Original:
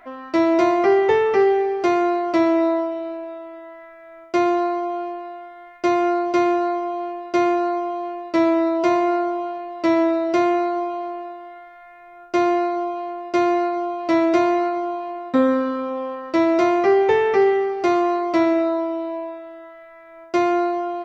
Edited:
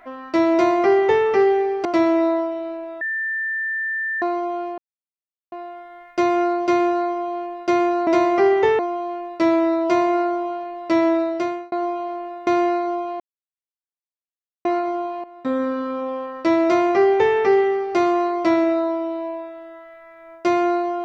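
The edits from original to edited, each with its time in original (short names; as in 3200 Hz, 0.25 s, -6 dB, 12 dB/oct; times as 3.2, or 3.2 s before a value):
0.53–1.25 copy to 7.73
1.85–2.25 cut
3.41–4.62 bleep 1780 Hz -21.5 dBFS
5.18 insert silence 0.74 s
10.15–10.66 fade out
11.41–12.36 cut
13.09–14.54 mute
15.13–15.88 fade in, from -13.5 dB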